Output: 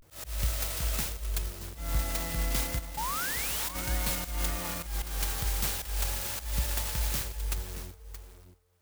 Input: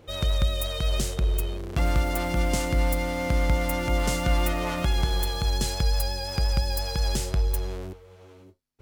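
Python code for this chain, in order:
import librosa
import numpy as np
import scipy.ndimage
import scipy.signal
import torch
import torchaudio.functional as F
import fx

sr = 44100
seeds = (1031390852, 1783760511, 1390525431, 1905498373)

y = fx.auto_swell(x, sr, attack_ms=193.0)
y = fx.level_steps(y, sr, step_db=18, at=(2.76, 3.74), fade=0.02)
y = fx.tone_stack(y, sr, knobs='5-5-5')
y = fx.vibrato(y, sr, rate_hz=0.33, depth_cents=74.0)
y = fx.spec_paint(y, sr, seeds[0], shape='rise', start_s=2.97, length_s=0.72, low_hz=830.0, high_hz=4000.0, level_db=-40.0)
y = y + 10.0 ** (-12.5 / 20.0) * np.pad(y, (int(625 * sr / 1000.0), 0))[:len(y)]
y = fx.clock_jitter(y, sr, seeds[1], jitter_ms=0.1)
y = F.gain(torch.from_numpy(y), 7.5).numpy()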